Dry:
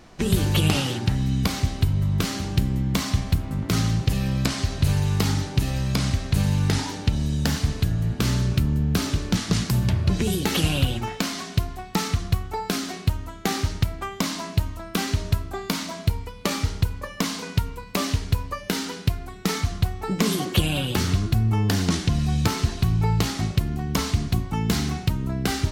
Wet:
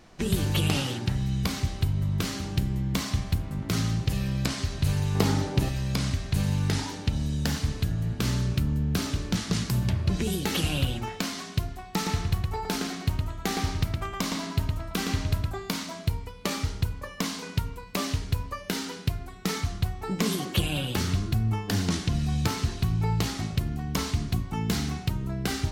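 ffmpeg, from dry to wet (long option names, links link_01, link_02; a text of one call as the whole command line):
ffmpeg -i in.wav -filter_complex "[0:a]asettb=1/sr,asplit=3[link_01][link_02][link_03];[link_01]atrim=end=5.154[link_04];[link_02]atrim=start=5.15:end=5.69,asetpts=PTS-STARTPTS,afade=type=in:duration=0.004:curve=qsin,afade=type=out:start_time=0.536:duration=0.004:curve=qsin,equalizer=frequency=500:width_type=o:width=2.6:gain=8.5[link_05];[link_03]atrim=start=5.686[link_06];[link_04][link_05]acrossfade=duration=0.004:curve1=hsin:curve2=qsin[link_07];[link_07][link_06]acrossfade=duration=0.004:curve1=qsin:curve2=hsin,asettb=1/sr,asplit=3[link_08][link_09][link_10];[link_08]atrim=end=11.894[link_11];[link_09]atrim=start=11.89:end=15.51,asetpts=PTS-STARTPTS,afade=type=in:duration=0.004:curve=qsin,afade=type=out:start_time=3.616:duration=0.004:curve=qsin,asplit=2[link_12][link_13];[link_13]adelay=114,lowpass=frequency=4100:poles=1,volume=-3dB,asplit=2[link_14][link_15];[link_15]adelay=114,lowpass=frequency=4100:poles=1,volume=0.26,asplit=2[link_16][link_17];[link_17]adelay=114,lowpass=frequency=4100:poles=1,volume=0.26,asplit=2[link_18][link_19];[link_19]adelay=114,lowpass=frequency=4100:poles=1,volume=0.26[link_20];[link_12][link_14][link_16][link_18][link_20]amix=inputs=5:normalize=0,atrim=end_sample=159642[link_21];[link_10]atrim=start=15.506[link_22];[link_11][link_21]acrossfade=duration=0.004:curve1=hsin:curve2=qsin[link_23];[link_23][link_22]acrossfade=duration=0.004:curve1=qsin:curve2=hsin,bandreject=frequency=52.43:width_type=h:width=4,bandreject=frequency=104.86:width_type=h:width=4,bandreject=frequency=157.29:width_type=h:width=4,bandreject=frequency=209.72:width_type=h:width=4,bandreject=frequency=262.15:width_type=h:width=4,bandreject=frequency=314.58:width_type=h:width=4,bandreject=frequency=367.01:width_type=h:width=4,bandreject=frequency=419.44:width_type=h:width=4,bandreject=frequency=471.87:width_type=h:width=4,bandreject=frequency=524.3:width_type=h:width=4,bandreject=frequency=576.73:width_type=h:width=4,bandreject=frequency=629.16:width_type=h:width=4,bandreject=frequency=681.59:width_type=h:width=4,bandreject=frequency=734.02:width_type=h:width=4,bandreject=frequency=786.45:width_type=h:width=4,bandreject=frequency=838.88:width_type=h:width=4,bandreject=frequency=891.31:width_type=h:width=4,bandreject=frequency=943.74:width_type=h:width=4,bandreject=frequency=996.17:width_type=h:width=4,bandreject=frequency=1048.6:width_type=h:width=4,bandreject=frequency=1101.03:width_type=h:width=4,bandreject=frequency=1153.46:width_type=h:width=4,bandreject=frequency=1205.89:width_type=h:width=4,bandreject=frequency=1258.32:width_type=h:width=4,bandreject=frequency=1310.75:width_type=h:width=4,bandreject=frequency=1363.18:width_type=h:width=4,bandreject=frequency=1415.61:width_type=h:width=4,bandreject=frequency=1468.04:width_type=h:width=4,volume=-4dB" out.wav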